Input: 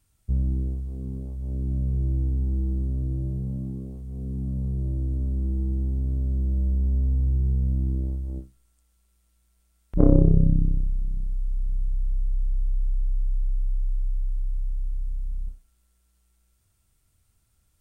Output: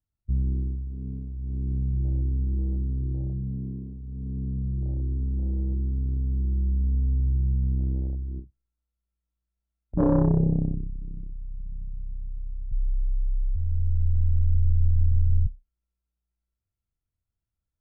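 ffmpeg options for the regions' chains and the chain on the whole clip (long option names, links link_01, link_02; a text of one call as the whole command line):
ffmpeg -i in.wav -filter_complex "[0:a]asettb=1/sr,asplit=3[link_01][link_02][link_03];[link_01]atrim=end=9.954[link_04];[link_02]atrim=start=9.95:end=12.72,asetpts=PTS-STARTPTS,afade=type=in:duration=0.004:curve=qsin,afade=type=out:start_time=2.766:duration=0.004:curve=qsin,highpass=frequency=190:poles=1,acontrast=85,volume=14.5dB,asoftclip=hard,volume=-14.5dB[link_05];[link_03]atrim=start=12.716[link_06];[link_04][link_05]acrossfade=duration=0.004:curve1=hsin:curve2=qsin[link_07];[link_07][link_06]acrossfade=duration=0.004:curve1=qsin:curve2=hsin,asettb=1/sr,asplit=3[link_08][link_09][link_10];[link_08]atrim=end=13.554[link_11];[link_09]atrim=start=13.55:end=15.47,asetpts=PTS-STARTPTS,afade=type=in:duration=0.004:curve=qsin,afade=type=out:start_time=1.916:duration=0.004:curve=qsin,aeval=exprs='val(0)+0.5*0.0158*sgn(val(0))':channel_layout=same,aeval=exprs='val(0)*sin(2*PI*52*n/s)':channel_layout=same,asubboost=boost=6.5:cutoff=190[link_12];[link_10]atrim=start=15.466[link_13];[link_11][link_12]acrossfade=duration=0.004:curve1=hsin:curve2=qsin[link_14];[link_14][link_13]acrossfade=duration=0.004:curve1=qsin:curve2=hsin,afwtdn=0.0251,lowpass=frequency=1000:poles=1,volume=-1dB" out.wav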